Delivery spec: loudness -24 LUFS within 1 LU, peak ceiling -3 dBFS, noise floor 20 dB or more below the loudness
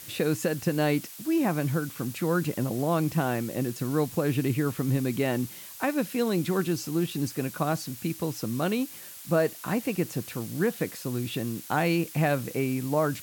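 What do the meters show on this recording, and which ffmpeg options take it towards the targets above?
noise floor -44 dBFS; noise floor target -49 dBFS; loudness -28.5 LUFS; peak level -13.5 dBFS; loudness target -24.0 LUFS
-> -af "afftdn=nr=6:nf=-44"
-af "volume=1.68"

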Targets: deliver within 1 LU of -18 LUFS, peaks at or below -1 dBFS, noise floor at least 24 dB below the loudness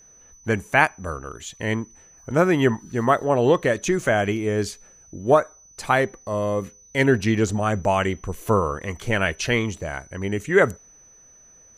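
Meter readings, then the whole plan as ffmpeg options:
steady tone 6 kHz; tone level -49 dBFS; loudness -22.5 LUFS; peak level -2.0 dBFS; loudness target -18.0 LUFS
-> -af "bandreject=f=6000:w=30"
-af "volume=1.68,alimiter=limit=0.891:level=0:latency=1"

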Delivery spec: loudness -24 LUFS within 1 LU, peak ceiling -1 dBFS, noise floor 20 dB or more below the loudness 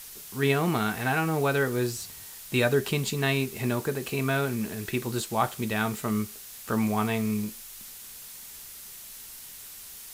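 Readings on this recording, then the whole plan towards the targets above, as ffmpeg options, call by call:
noise floor -44 dBFS; noise floor target -48 dBFS; loudness -28.0 LUFS; peak level -10.5 dBFS; loudness target -24.0 LUFS
-> -af "afftdn=nr=6:nf=-44"
-af "volume=1.58"

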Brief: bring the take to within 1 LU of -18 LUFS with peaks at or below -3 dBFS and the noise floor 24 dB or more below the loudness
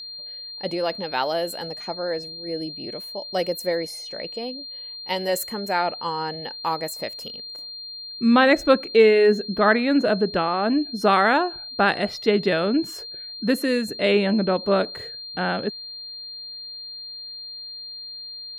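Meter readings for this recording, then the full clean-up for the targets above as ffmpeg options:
steady tone 4.2 kHz; tone level -34 dBFS; loudness -22.5 LUFS; peak level -3.0 dBFS; loudness target -18.0 LUFS
-> -af "bandreject=f=4200:w=30"
-af "volume=1.68,alimiter=limit=0.708:level=0:latency=1"

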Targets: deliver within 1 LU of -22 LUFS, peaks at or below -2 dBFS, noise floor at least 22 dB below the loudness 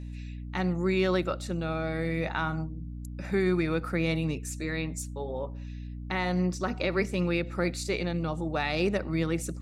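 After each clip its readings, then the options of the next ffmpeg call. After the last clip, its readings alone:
hum 60 Hz; highest harmonic 300 Hz; hum level -36 dBFS; loudness -30.0 LUFS; peak level -15.0 dBFS; loudness target -22.0 LUFS
-> -af "bandreject=f=60:t=h:w=6,bandreject=f=120:t=h:w=6,bandreject=f=180:t=h:w=6,bandreject=f=240:t=h:w=6,bandreject=f=300:t=h:w=6"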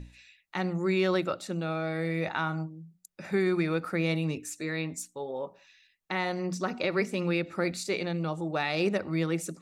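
hum not found; loudness -30.5 LUFS; peak level -15.5 dBFS; loudness target -22.0 LUFS
-> -af "volume=2.66"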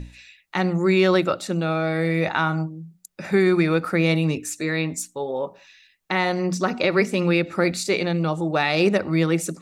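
loudness -22.0 LUFS; peak level -7.0 dBFS; noise floor -60 dBFS

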